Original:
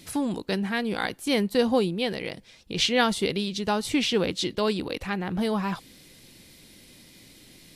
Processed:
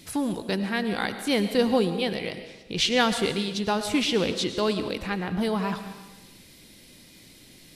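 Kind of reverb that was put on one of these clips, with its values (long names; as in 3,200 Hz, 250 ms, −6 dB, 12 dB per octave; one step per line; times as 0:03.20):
comb and all-pass reverb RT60 1.1 s, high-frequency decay 1×, pre-delay 65 ms, DRR 9 dB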